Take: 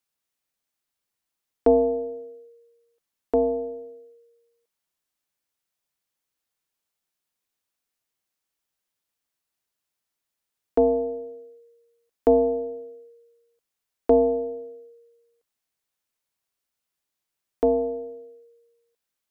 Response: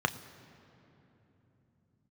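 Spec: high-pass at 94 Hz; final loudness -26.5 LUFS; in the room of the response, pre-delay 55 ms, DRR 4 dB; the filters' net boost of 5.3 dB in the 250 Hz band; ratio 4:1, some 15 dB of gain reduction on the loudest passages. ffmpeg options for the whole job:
-filter_complex "[0:a]highpass=94,equalizer=f=250:t=o:g=5.5,acompressor=threshold=-30dB:ratio=4,asplit=2[a][b];[1:a]atrim=start_sample=2205,adelay=55[c];[b][c]afir=irnorm=-1:irlink=0,volume=-13.5dB[d];[a][d]amix=inputs=2:normalize=0,volume=7.5dB"

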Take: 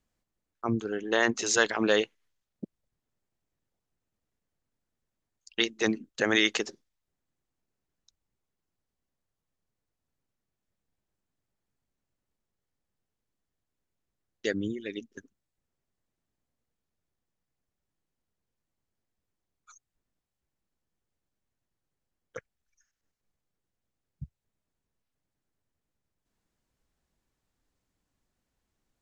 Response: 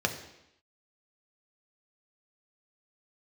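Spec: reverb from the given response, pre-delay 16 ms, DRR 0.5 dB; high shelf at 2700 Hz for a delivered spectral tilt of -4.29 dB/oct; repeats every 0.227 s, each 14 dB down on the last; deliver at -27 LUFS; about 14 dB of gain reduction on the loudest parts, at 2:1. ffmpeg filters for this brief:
-filter_complex "[0:a]highshelf=f=2.7k:g=-6,acompressor=threshold=-46dB:ratio=2,aecho=1:1:227|454:0.2|0.0399,asplit=2[a][b];[1:a]atrim=start_sample=2205,adelay=16[c];[b][c]afir=irnorm=-1:irlink=0,volume=-9.5dB[d];[a][d]amix=inputs=2:normalize=0,volume=13dB"

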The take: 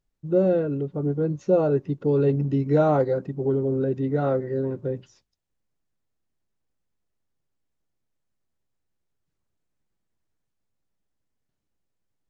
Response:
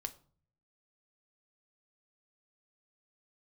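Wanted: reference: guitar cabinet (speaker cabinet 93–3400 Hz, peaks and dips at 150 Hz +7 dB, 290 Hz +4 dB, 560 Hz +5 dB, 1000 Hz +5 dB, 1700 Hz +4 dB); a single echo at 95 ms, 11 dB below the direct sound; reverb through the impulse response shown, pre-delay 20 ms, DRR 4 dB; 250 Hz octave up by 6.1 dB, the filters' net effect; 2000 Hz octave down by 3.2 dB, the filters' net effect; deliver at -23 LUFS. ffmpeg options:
-filter_complex "[0:a]equalizer=f=250:t=o:g=3.5,equalizer=f=2k:t=o:g=-9,aecho=1:1:95:0.282,asplit=2[a][b];[1:a]atrim=start_sample=2205,adelay=20[c];[b][c]afir=irnorm=-1:irlink=0,volume=-2dB[d];[a][d]amix=inputs=2:normalize=0,highpass=93,equalizer=f=150:t=q:w=4:g=7,equalizer=f=290:t=q:w=4:g=4,equalizer=f=560:t=q:w=4:g=5,equalizer=f=1k:t=q:w=4:g=5,equalizer=f=1.7k:t=q:w=4:g=4,lowpass=f=3.4k:w=0.5412,lowpass=f=3.4k:w=1.3066,volume=-6.5dB"

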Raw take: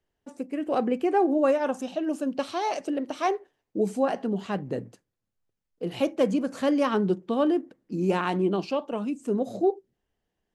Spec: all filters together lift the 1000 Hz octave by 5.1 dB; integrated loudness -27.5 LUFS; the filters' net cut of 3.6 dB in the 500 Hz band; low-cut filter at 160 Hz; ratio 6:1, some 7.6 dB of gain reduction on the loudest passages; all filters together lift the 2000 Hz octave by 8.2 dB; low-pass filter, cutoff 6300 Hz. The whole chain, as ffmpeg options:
-af "highpass=160,lowpass=6.3k,equalizer=f=500:t=o:g=-7,equalizer=f=1k:t=o:g=7.5,equalizer=f=2k:t=o:g=8.5,acompressor=threshold=-24dB:ratio=6,volume=3.5dB"

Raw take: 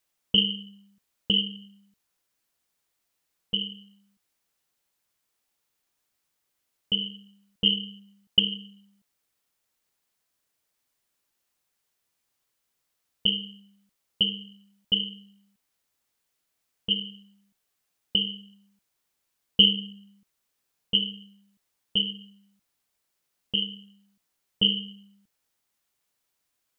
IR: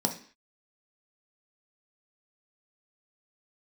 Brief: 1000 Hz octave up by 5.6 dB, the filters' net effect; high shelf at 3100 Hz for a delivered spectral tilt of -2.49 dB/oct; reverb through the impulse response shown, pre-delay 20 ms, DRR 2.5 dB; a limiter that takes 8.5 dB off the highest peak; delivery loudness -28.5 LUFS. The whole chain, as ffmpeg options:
-filter_complex "[0:a]equalizer=f=1k:t=o:g=7,highshelf=f=3.1k:g=4.5,alimiter=limit=-10.5dB:level=0:latency=1,asplit=2[a][b];[1:a]atrim=start_sample=2205,adelay=20[c];[b][c]afir=irnorm=-1:irlink=0,volume=-10dB[d];[a][d]amix=inputs=2:normalize=0,volume=-3.5dB"

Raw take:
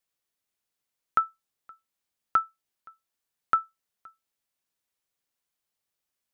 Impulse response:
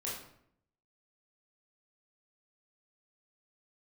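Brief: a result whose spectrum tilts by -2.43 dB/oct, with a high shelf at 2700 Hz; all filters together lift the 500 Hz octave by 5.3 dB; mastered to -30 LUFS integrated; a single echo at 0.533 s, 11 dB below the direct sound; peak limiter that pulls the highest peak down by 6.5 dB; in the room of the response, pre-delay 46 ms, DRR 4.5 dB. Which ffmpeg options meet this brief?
-filter_complex "[0:a]equalizer=f=500:t=o:g=7,highshelf=f=2.7k:g=-7.5,alimiter=limit=-17.5dB:level=0:latency=1,aecho=1:1:533:0.282,asplit=2[a][b];[1:a]atrim=start_sample=2205,adelay=46[c];[b][c]afir=irnorm=-1:irlink=0,volume=-6.5dB[d];[a][d]amix=inputs=2:normalize=0,volume=6dB"

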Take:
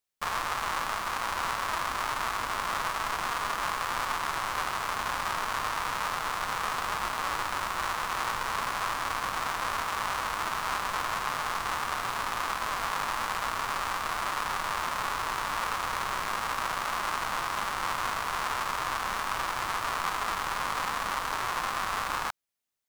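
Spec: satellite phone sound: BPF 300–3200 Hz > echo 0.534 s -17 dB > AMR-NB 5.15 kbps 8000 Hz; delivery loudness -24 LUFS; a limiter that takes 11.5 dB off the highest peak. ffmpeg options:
-af "alimiter=level_in=0.5dB:limit=-24dB:level=0:latency=1,volume=-0.5dB,highpass=300,lowpass=3.2k,aecho=1:1:534:0.141,volume=16.5dB" -ar 8000 -c:a libopencore_amrnb -b:a 5150

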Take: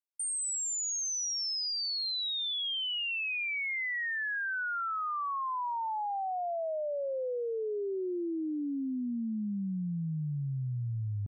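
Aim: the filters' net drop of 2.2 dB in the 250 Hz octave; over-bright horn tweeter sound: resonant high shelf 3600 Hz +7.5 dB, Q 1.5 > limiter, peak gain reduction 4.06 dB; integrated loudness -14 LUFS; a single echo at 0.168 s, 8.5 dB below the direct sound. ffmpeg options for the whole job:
-af "equalizer=f=250:t=o:g=-3,highshelf=f=3.6k:t=q:w=1.5:g=7.5,aecho=1:1:168:0.376,volume=15.5dB,alimiter=limit=-7dB:level=0:latency=1"

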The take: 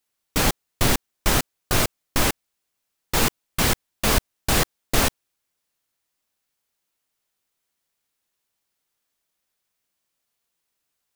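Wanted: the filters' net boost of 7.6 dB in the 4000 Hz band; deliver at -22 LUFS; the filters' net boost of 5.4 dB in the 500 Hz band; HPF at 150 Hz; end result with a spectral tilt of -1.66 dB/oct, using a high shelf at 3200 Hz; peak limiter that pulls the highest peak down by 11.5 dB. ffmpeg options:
-af "highpass=150,equalizer=f=500:t=o:g=6.5,highshelf=f=3.2k:g=6,equalizer=f=4k:t=o:g=5,volume=4dB,alimiter=limit=-10dB:level=0:latency=1"

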